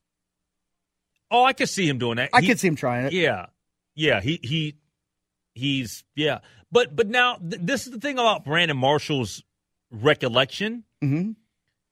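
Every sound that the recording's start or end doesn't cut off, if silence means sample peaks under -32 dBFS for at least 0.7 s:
1.31–4.7

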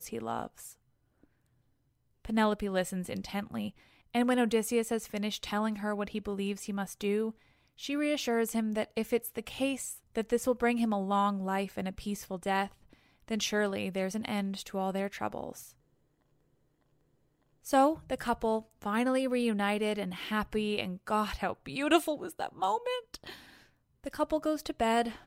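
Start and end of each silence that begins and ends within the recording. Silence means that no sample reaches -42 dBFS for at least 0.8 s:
0.71–2.25
15.66–17.66

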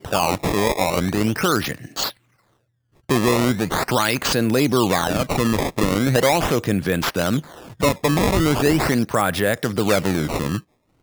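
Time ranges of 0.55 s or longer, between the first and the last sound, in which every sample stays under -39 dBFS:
2.11–3.1

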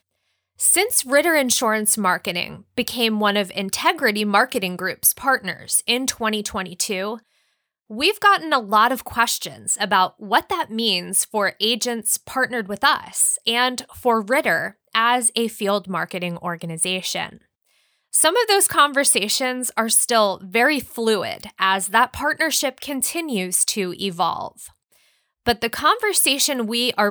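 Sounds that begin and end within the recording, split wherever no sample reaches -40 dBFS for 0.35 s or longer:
0.59–7.19
7.9–17.37
18.13–24.68

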